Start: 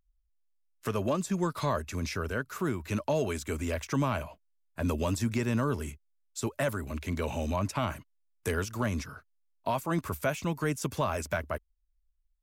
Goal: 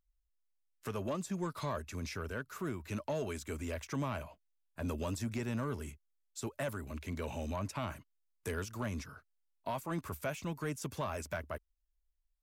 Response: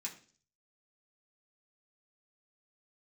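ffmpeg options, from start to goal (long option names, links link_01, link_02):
-af "asoftclip=type=tanh:threshold=-20.5dB,volume=-6.5dB"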